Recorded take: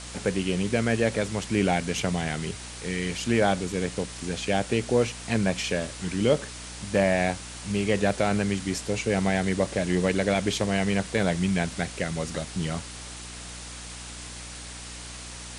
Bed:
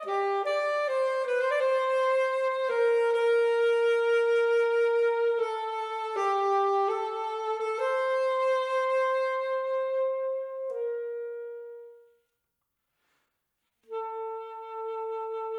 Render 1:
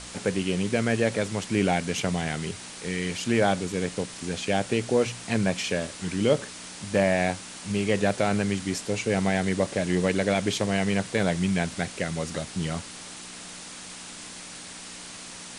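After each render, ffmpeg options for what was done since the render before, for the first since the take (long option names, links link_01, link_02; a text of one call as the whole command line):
ffmpeg -i in.wav -af "bandreject=frequency=60:width_type=h:width=4,bandreject=frequency=120:width_type=h:width=4" out.wav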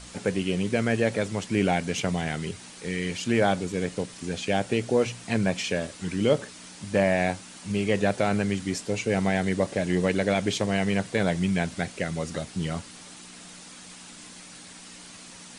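ffmpeg -i in.wav -af "afftdn=noise_reduction=6:noise_floor=-41" out.wav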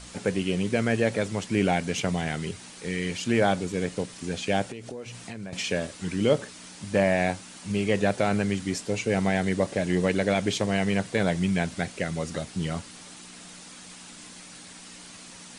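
ffmpeg -i in.wav -filter_complex "[0:a]asettb=1/sr,asplit=3[link_01][link_02][link_03];[link_01]atrim=end=4.694[link_04];[link_02]atrim=start=4.69:end=5.53,asetpts=PTS-STARTPTS,afade=type=in:duration=0.004:curve=qsin,afade=type=out:start_time=0.836:duration=0.004:curve=qsin,acompressor=threshold=-34dB:ratio=8:attack=3.2:release=140:knee=1:detection=peak[link_05];[link_03]atrim=start=5.526[link_06];[link_04][link_05]acrossfade=duration=0.004:curve1=hsin:curve2=qsin[link_07];[link_07][link_06]acrossfade=duration=0.004:curve1=qsin:curve2=hsin" out.wav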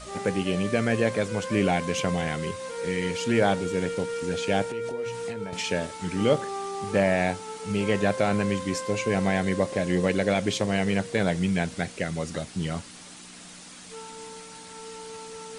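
ffmpeg -i in.wav -i bed.wav -filter_complex "[1:a]volume=-8dB[link_01];[0:a][link_01]amix=inputs=2:normalize=0" out.wav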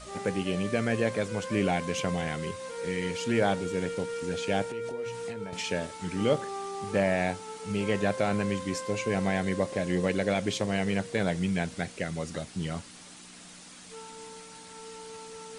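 ffmpeg -i in.wav -af "volume=-3.5dB" out.wav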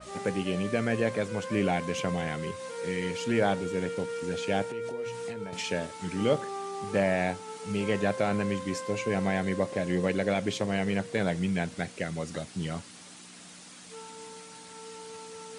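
ffmpeg -i in.wav -af "highpass=80,adynamicequalizer=threshold=0.00708:dfrequency=3000:dqfactor=0.7:tfrequency=3000:tqfactor=0.7:attack=5:release=100:ratio=0.375:range=1.5:mode=cutabove:tftype=highshelf" out.wav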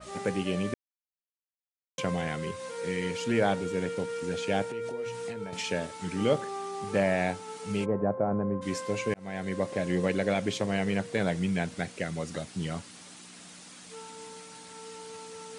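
ffmpeg -i in.wav -filter_complex "[0:a]asplit=3[link_01][link_02][link_03];[link_01]afade=type=out:start_time=7.84:duration=0.02[link_04];[link_02]lowpass=frequency=1100:width=0.5412,lowpass=frequency=1100:width=1.3066,afade=type=in:start_time=7.84:duration=0.02,afade=type=out:start_time=8.61:duration=0.02[link_05];[link_03]afade=type=in:start_time=8.61:duration=0.02[link_06];[link_04][link_05][link_06]amix=inputs=3:normalize=0,asplit=4[link_07][link_08][link_09][link_10];[link_07]atrim=end=0.74,asetpts=PTS-STARTPTS,afade=type=out:start_time=0.736:duration=0.004:curve=hsin[link_11];[link_08]atrim=start=0.74:end=1.98,asetpts=PTS-STARTPTS,volume=0[link_12];[link_09]atrim=start=1.98:end=9.14,asetpts=PTS-STARTPTS,afade=type=in:duration=0.004:curve=hsin,afade=type=out:start_time=7.156:duration=0.004:curve=hsin[link_13];[link_10]atrim=start=9.14,asetpts=PTS-STARTPTS,afade=type=in:duration=0.75:curve=qsin[link_14];[link_11][link_12][link_13][link_14]concat=n=4:v=0:a=1" out.wav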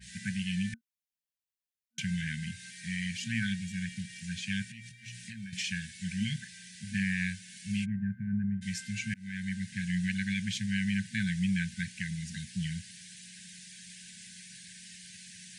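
ffmpeg -i in.wav -af "afftfilt=real='re*(1-between(b*sr/4096,230,1500))':imag='im*(1-between(b*sr/4096,230,1500))':win_size=4096:overlap=0.75" out.wav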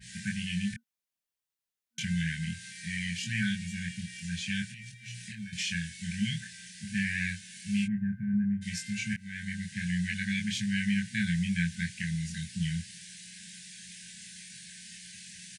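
ffmpeg -i in.wav -filter_complex "[0:a]asplit=2[link_01][link_02];[link_02]adelay=24,volume=-2dB[link_03];[link_01][link_03]amix=inputs=2:normalize=0" out.wav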